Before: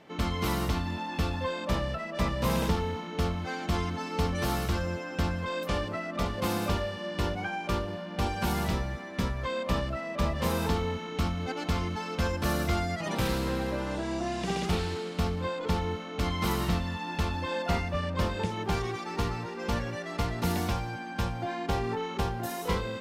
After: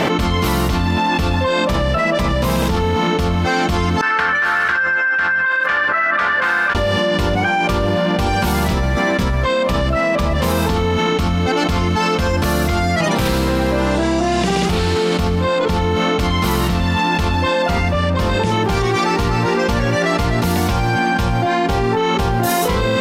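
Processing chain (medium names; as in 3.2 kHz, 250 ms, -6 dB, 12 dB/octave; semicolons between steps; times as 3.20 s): 4.01–6.75 s: band-pass filter 1.6 kHz, Q 9.5; level flattener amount 100%; trim +6 dB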